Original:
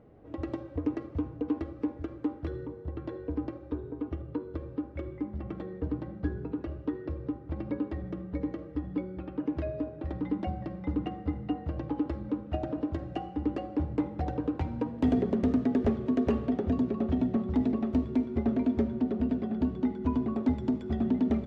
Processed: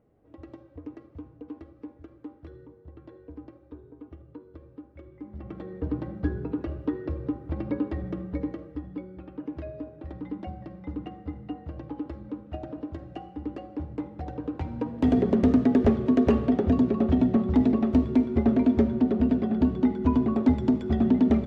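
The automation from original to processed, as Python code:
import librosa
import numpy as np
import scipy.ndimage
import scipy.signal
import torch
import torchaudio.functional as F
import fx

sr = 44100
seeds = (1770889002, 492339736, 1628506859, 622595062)

y = fx.gain(x, sr, db=fx.line((5.11, -10.0), (5.38, -3.0), (6.0, 4.0), (8.24, 4.0), (8.97, -4.0), (14.24, -4.0), (15.36, 6.0)))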